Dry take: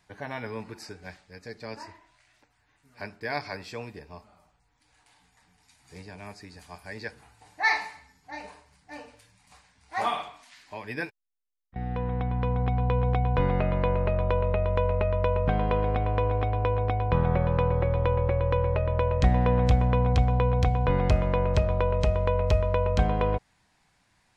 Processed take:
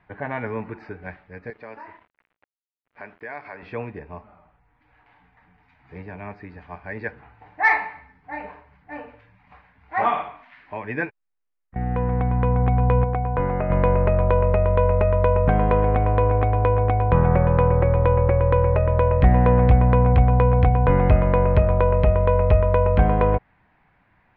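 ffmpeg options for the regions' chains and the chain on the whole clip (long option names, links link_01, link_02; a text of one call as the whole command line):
ffmpeg -i in.wav -filter_complex "[0:a]asettb=1/sr,asplit=3[link_01][link_02][link_03];[link_01]atrim=end=1.504[link_04];[link_02]atrim=start=1.5:end=3.63,asetpts=PTS-STARTPTS,afade=type=in:duration=0.004:curve=qsin,afade=type=out:start_time=2.126:duration=0.004:curve=qsin,highpass=frequency=430:poles=1,acompressor=threshold=-44dB:ratio=2:attack=3.2:release=140:knee=1:detection=peak,aeval=exprs='val(0)*gte(abs(val(0)),0.0015)':channel_layout=same[link_05];[link_03]atrim=start=3.626[link_06];[link_04][link_05]acrossfade=duration=0.004:curve1=hsin:curve2=qsin[link_07];[link_07][link_06]acrossfade=duration=0.004:curve1=qsin:curve2=hsin,asettb=1/sr,asplit=3[link_08][link_09][link_10];[link_08]atrim=end=13.044[link_11];[link_09]atrim=start=13.04:end=13.7,asetpts=PTS-STARTPTS,afade=type=in:duration=0.004:curve=qsin,afade=type=out:start_time=0.656:duration=0.004:curve=qsin,lowpass=frequency=1300:poles=1,lowshelf=frequency=460:gain=-7.5[link_12];[link_10]atrim=start=13.696[link_13];[link_11][link_12]acrossfade=duration=0.004:curve1=hsin:curve2=qsin[link_14];[link_14][link_13]acrossfade=duration=0.004:curve1=qsin:curve2=hsin,lowpass=frequency=2300:width=0.5412,lowpass=frequency=2300:width=1.3066,acontrast=82" out.wav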